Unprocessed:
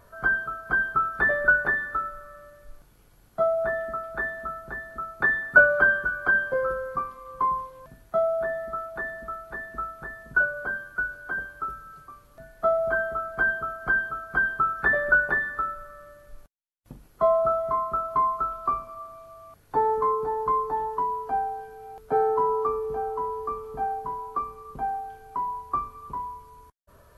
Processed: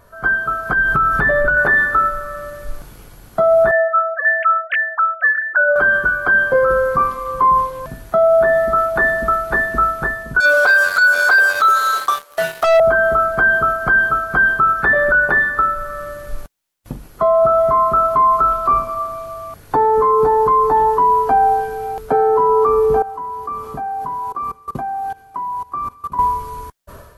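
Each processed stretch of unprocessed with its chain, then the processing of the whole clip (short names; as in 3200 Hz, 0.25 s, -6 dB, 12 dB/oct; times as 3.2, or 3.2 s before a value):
0.73–1.57 low shelf 130 Hz +11.5 dB + comb 7 ms, depth 36% + compressor, threshold -29 dBFS
3.71–5.76 sine-wave speech + HPF 1000 Hz 6 dB/oct + air absorption 240 m
10.4–12.8 HPF 490 Hz 24 dB/oct + sample leveller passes 3 + negative-ratio compressor -21 dBFS, ratio -0.5
23.02–26.19 low shelf 61 Hz -9.5 dB + level quantiser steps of 21 dB + notch comb 450 Hz
whole clip: AGC gain up to 14.5 dB; limiter -12 dBFS; gain +5 dB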